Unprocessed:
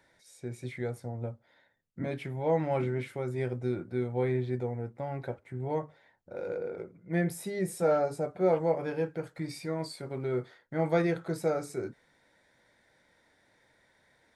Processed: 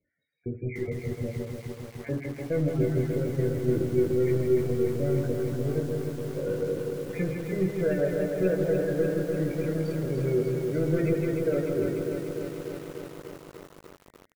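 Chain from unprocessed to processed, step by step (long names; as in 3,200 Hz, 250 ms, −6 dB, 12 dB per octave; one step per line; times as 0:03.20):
time-frequency cells dropped at random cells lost 32%
Bessel low-pass filter 2,500 Hz, order 4
parametric band 89 Hz +3 dB 2.2 octaves
leveller curve on the samples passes 3
double-tracking delay 21 ms −5 dB
single-tap delay 158 ms −5.5 dB
spectral peaks only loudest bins 32
Butterworth band-reject 940 Hz, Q 0.87
feedback delay network reverb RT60 1.3 s, low-frequency decay 0.75×, high-frequency decay 0.65×, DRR 11.5 dB
feedback echo at a low word length 296 ms, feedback 80%, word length 7 bits, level −5 dB
level −5 dB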